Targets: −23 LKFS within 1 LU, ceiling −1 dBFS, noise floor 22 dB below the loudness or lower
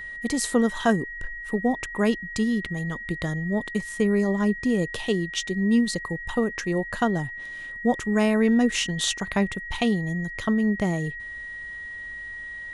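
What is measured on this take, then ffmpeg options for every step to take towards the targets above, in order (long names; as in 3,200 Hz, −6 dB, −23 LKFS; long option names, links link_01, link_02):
interfering tone 1,900 Hz; level of the tone −34 dBFS; integrated loudness −25.5 LKFS; sample peak −8.0 dBFS; target loudness −23.0 LKFS
→ -af "bandreject=frequency=1900:width=30"
-af "volume=2.5dB"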